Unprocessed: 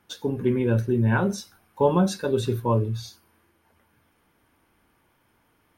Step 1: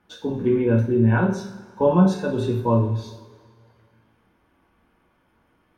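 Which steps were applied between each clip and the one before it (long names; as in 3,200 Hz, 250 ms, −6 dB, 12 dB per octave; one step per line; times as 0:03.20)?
low-pass filter 2,200 Hz 6 dB per octave
coupled-rooms reverb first 0.47 s, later 2 s, from −16 dB, DRR 0.5 dB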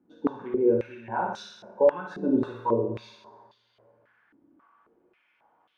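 downward compressor, threshold −19 dBFS, peak gain reduction 8.5 dB
flutter between parallel walls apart 10.3 metres, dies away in 0.7 s
band-pass on a step sequencer 3.7 Hz 290–3,400 Hz
level +7.5 dB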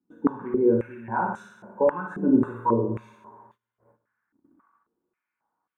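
noise gate −60 dBFS, range −17 dB
drawn EQ curve 130 Hz 0 dB, 210 Hz +2 dB, 650 Hz −8 dB, 1,000 Hz 0 dB, 1,500 Hz −1 dB, 2,300 Hz −8 dB, 4,800 Hz −30 dB, 7,500 Hz −1 dB
level +5 dB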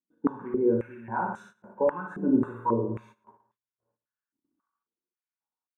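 noise gate −46 dBFS, range −16 dB
level −3.5 dB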